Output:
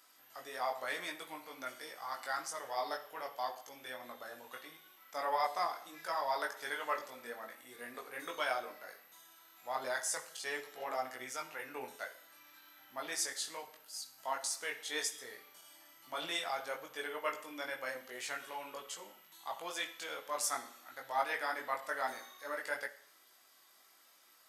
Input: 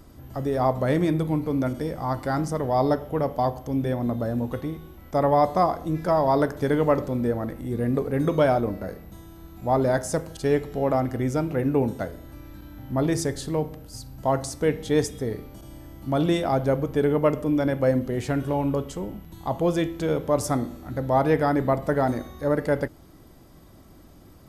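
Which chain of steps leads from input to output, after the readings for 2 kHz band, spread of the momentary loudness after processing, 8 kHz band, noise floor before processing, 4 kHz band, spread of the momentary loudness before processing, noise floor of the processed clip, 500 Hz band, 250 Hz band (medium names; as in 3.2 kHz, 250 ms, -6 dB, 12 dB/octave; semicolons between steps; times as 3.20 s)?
-3.5 dB, 15 LU, -2.0 dB, -49 dBFS, -2.0 dB, 12 LU, -65 dBFS, -19.5 dB, -30.5 dB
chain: high-pass 1.5 kHz 12 dB/octave; chorus voices 6, 0.77 Hz, delay 20 ms, depth 4.1 ms; Schroeder reverb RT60 0.61 s, combs from 29 ms, DRR 13.5 dB; trim +1 dB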